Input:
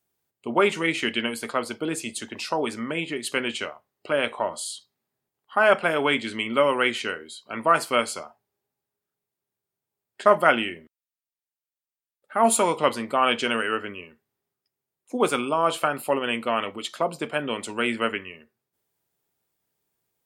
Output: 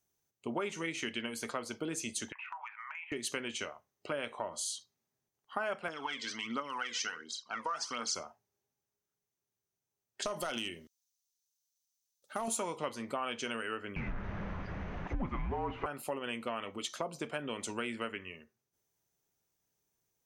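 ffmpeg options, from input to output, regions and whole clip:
ffmpeg -i in.wav -filter_complex "[0:a]asettb=1/sr,asplit=3[link_01][link_02][link_03];[link_01]atrim=end=2.324[link_04];[link_02]atrim=start=2.32:end=3.12,asetpts=PTS-STARTPTS,afade=type=in:duration=0.004:curve=qsin,afade=type=out:start_time=0.796:duration=0.004:curve=qsin,asuperpass=centerf=1500:order=12:qfactor=0.85,acompressor=threshold=-34dB:ratio=6:attack=3.2:release=140:knee=1:detection=peak[link_05];[link_03]atrim=start=3.116[link_06];[link_04][link_05]acrossfade=duration=0.004:curve1=hsin:curve2=qsin[link_07];[link_07][link_06]acrossfade=duration=0.004:curve1=qsin:curve2=hsin,asettb=1/sr,asplit=3[link_08][link_09][link_10];[link_08]atrim=end=5.884[link_11];[link_09]atrim=start=5.88:end=8.15,asetpts=PTS-STARTPTS,afade=type=in:duration=0.004:curve=qsin,afade=type=out:start_time=2.266:duration=0.004:curve=qsin,acompressor=threshold=-26dB:ratio=2:attack=3.2:release=140:knee=1:detection=peak,aphaser=in_gain=1:out_gain=1:delay=2.1:decay=0.62:speed=1.4:type=triangular,highpass=290,equalizer=frequency=370:width_type=q:width=4:gain=-9,equalizer=frequency=580:width_type=q:width=4:gain=-10,equalizer=frequency=1200:width_type=q:width=4:gain=4,equalizer=frequency=2400:width_type=q:width=4:gain=-6,equalizer=frequency=5200:width_type=q:width=4:gain=9,lowpass=frequency=7300:width=0.5412,lowpass=frequency=7300:width=1.3066[link_12];[link_10]atrim=start=8.146[link_13];[link_11][link_12]acrossfade=duration=0.004:curve1=hsin:curve2=qsin[link_14];[link_14][link_13]acrossfade=duration=0.004:curve1=qsin:curve2=hsin,asettb=1/sr,asplit=3[link_15][link_16][link_17];[link_15]atrim=end=10.224[link_18];[link_16]atrim=start=10.22:end=12.48,asetpts=PTS-STARTPTS,afade=type=in:duration=0.004:curve=qsin,afade=type=out:start_time=2.256:duration=0.004:curve=qsin,highshelf=frequency=2900:width_type=q:width=1.5:gain=11,acompressor=threshold=-19dB:ratio=6:attack=3.2:release=140:knee=1:detection=peak,volume=17dB,asoftclip=hard,volume=-17dB[link_19];[link_17]atrim=start=12.476[link_20];[link_18][link_19]acrossfade=duration=0.004:curve1=hsin:curve2=qsin[link_21];[link_21][link_20]acrossfade=duration=0.004:curve1=qsin:curve2=hsin,asettb=1/sr,asplit=3[link_22][link_23][link_24];[link_22]atrim=end=13.964[link_25];[link_23]atrim=start=13.96:end=15.86,asetpts=PTS-STARTPTS,afade=type=in:duration=0.004:curve=qsin,afade=type=out:start_time=1.896:duration=0.004:curve=qsin,aeval=exprs='val(0)+0.5*0.0631*sgn(val(0))':channel_layout=same,lowpass=frequency=2300:width=0.5412,lowpass=frequency=2300:width=1.3066,afreqshift=-210[link_26];[link_24]atrim=start=15.856[link_27];[link_25][link_26]acrossfade=duration=0.004:curve1=hsin:curve2=qsin[link_28];[link_28][link_27]acrossfade=duration=0.004:curve1=qsin:curve2=hsin,lowshelf=frequency=98:gain=8,acompressor=threshold=-29dB:ratio=4,equalizer=frequency=6100:width=4.5:gain=13,volume=-5.5dB" out.wav

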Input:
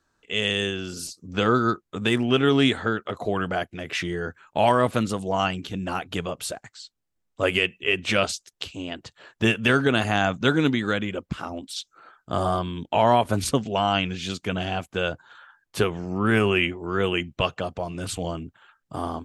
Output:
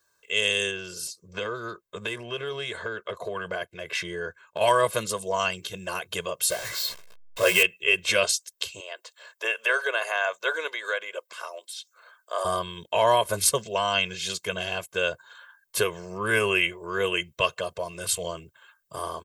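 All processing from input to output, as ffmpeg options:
ffmpeg -i in.wav -filter_complex "[0:a]asettb=1/sr,asplit=3[link_01][link_02][link_03];[link_01]atrim=end=0.714[link_04];[link_02]atrim=start=0.71:end=4.61,asetpts=PTS-STARTPTS,afade=type=in:duration=0.004:curve=qsin,afade=type=out:start_time=3.896:duration=0.004:curve=qsin,highshelf=frequency=5400:gain=-11,acompressor=threshold=-23dB:ratio=6:attack=3.2:release=140:knee=1:detection=peak[link_05];[link_03]atrim=start=4.606[link_06];[link_04][link_05]acrossfade=duration=0.004:curve1=hsin:curve2=qsin[link_07];[link_07][link_06]acrossfade=duration=0.004:curve1=qsin:curve2=hsin,asettb=1/sr,asplit=3[link_08][link_09][link_10];[link_08]atrim=end=6.504[link_11];[link_09]atrim=start=6.5:end=7.63,asetpts=PTS-STARTPTS,afade=type=in:duration=0.004:curve=qsin,afade=type=out:start_time=1.126:duration=0.004:curve=qsin,aeval=exprs='val(0)+0.5*0.0398*sgn(val(0))':channel_layout=same,adynamicsmooth=sensitivity=6.5:basefreq=2300,asplit=2[link_12][link_13];[link_13]adelay=17,volume=-4dB[link_14];[link_12][link_14]amix=inputs=2:normalize=0,atrim=end_sample=49833[link_15];[link_10]atrim=start=7.626[link_16];[link_11][link_15]acrossfade=duration=0.004:curve1=hsin:curve2=qsin[link_17];[link_17][link_16]acrossfade=duration=0.004:curve1=qsin:curve2=hsin,asettb=1/sr,asplit=3[link_18][link_19][link_20];[link_18]atrim=end=8.804[link_21];[link_19]atrim=start=8.8:end=12.45,asetpts=PTS-STARTPTS,afade=type=in:duration=0.004:curve=qsin,afade=type=out:start_time=3.646:duration=0.004:curve=qsin,highpass=frequency=500:width=0.5412,highpass=frequency=500:width=1.3066,acrossover=split=2600[link_22][link_23];[link_23]acompressor=threshold=-44dB:ratio=4:attack=1:release=60[link_24];[link_22][link_24]amix=inputs=2:normalize=0[link_25];[link_20]atrim=start=12.446[link_26];[link_21][link_25]acrossfade=duration=0.004:curve1=hsin:curve2=qsin[link_27];[link_27][link_26]acrossfade=duration=0.004:curve1=qsin:curve2=hsin,aemphasis=mode=production:type=bsi,aecho=1:1:1.9:0.98,volume=-4dB" out.wav

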